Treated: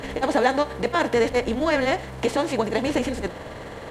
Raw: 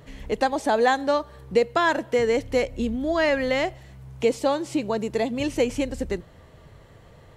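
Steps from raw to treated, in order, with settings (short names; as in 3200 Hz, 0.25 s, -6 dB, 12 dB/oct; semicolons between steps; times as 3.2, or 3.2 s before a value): per-bin compression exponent 0.6; granular stretch 0.53×, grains 0.102 s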